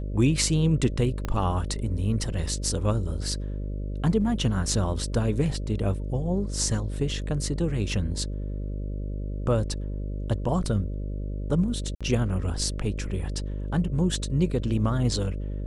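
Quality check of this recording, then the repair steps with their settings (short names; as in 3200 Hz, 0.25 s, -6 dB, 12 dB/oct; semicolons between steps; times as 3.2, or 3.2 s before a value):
buzz 50 Hz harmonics 12 -31 dBFS
1.25 pop -16 dBFS
11.95–12.01 gap 56 ms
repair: de-click; de-hum 50 Hz, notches 12; interpolate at 11.95, 56 ms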